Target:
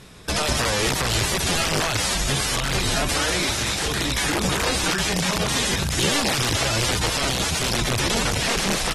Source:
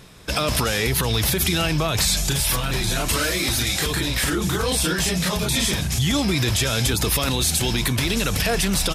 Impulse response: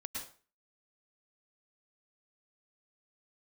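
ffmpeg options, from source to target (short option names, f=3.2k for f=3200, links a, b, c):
-filter_complex "[0:a]aeval=exprs='(mod(6.68*val(0)+1,2)-1)/6.68':c=same,acrossover=split=9100[a][b];[b]acompressor=threshold=-31dB:ratio=4:attack=1:release=60[c];[a][c]amix=inputs=2:normalize=0" -ar 48000 -c:a aac -b:a 32k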